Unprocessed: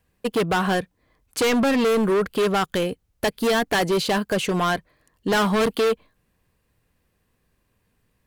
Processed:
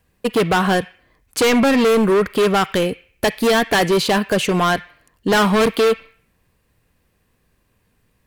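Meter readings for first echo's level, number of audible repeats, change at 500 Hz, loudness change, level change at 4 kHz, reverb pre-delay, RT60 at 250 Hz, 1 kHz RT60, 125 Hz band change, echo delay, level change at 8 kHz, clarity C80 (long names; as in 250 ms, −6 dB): no echo audible, no echo audible, +5.0 dB, +5.0 dB, +5.0 dB, 34 ms, 0.70 s, 0.55 s, +5.0 dB, no echo audible, +5.0 dB, 17.5 dB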